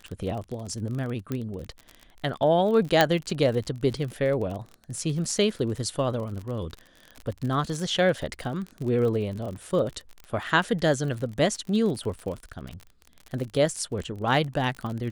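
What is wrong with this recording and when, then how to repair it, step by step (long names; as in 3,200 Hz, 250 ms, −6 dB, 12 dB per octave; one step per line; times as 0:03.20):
surface crackle 42 per second −32 dBFS
0:01.32: click −17 dBFS
0:03.01: click −4 dBFS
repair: click removal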